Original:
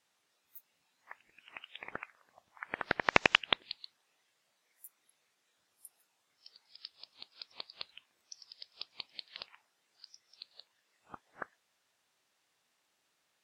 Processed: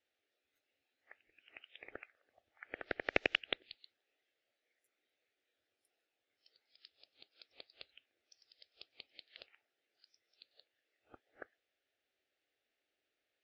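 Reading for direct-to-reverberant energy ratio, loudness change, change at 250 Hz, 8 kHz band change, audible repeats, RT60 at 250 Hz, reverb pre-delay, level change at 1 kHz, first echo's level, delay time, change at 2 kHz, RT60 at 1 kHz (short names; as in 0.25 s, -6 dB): none, -4.5 dB, -6.0 dB, under -15 dB, none, none, none, -13.5 dB, none, none, -7.5 dB, none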